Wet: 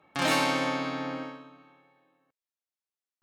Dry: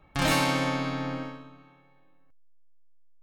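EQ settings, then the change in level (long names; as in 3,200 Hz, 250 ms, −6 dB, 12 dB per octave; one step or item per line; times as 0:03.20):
high-pass filter 230 Hz 12 dB per octave
high-shelf EQ 11,000 Hz −8 dB
0.0 dB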